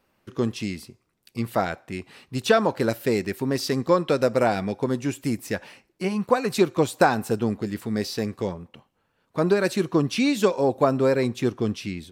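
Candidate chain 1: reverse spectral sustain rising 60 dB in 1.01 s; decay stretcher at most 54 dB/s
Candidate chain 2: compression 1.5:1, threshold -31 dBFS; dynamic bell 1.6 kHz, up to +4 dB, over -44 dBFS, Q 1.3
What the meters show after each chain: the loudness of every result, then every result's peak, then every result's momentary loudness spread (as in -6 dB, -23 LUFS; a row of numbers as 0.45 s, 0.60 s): -20.0 LUFS, -28.5 LUFS; -2.5 dBFS, -10.5 dBFS; 13 LU, 10 LU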